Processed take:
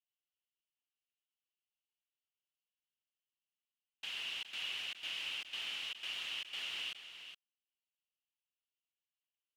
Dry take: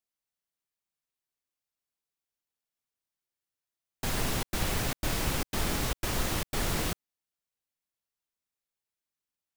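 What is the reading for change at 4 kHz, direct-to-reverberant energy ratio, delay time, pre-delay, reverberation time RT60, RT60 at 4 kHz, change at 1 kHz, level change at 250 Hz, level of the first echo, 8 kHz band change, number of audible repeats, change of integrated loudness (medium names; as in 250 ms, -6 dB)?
-1.0 dB, no reverb, 416 ms, no reverb, no reverb, no reverb, -20.0 dB, -33.0 dB, -10.0 dB, -19.5 dB, 1, -8.5 dB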